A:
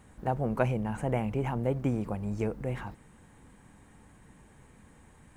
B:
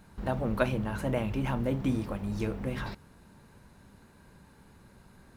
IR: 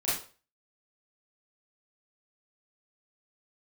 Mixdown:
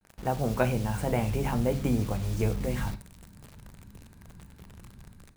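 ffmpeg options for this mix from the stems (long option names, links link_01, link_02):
-filter_complex "[0:a]acrusher=bits=7:mix=0:aa=0.000001,adynamicequalizer=threshold=0.00224:dfrequency=2800:dqfactor=0.7:tfrequency=2800:tqfactor=0.7:attack=5:release=100:ratio=0.375:range=2.5:mode=boostabove:tftype=highshelf,volume=0.5dB,asplit=2[link_01][link_02];[link_02]volume=-21.5dB[link_03];[1:a]asubboost=boost=5:cutoff=230,dynaudnorm=framelen=300:gausssize=3:maxgain=12.5dB,adelay=11,volume=-17dB,asplit=2[link_04][link_05];[link_05]volume=-18dB[link_06];[2:a]atrim=start_sample=2205[link_07];[link_03][link_06]amix=inputs=2:normalize=0[link_08];[link_08][link_07]afir=irnorm=-1:irlink=0[link_09];[link_01][link_04][link_09]amix=inputs=3:normalize=0"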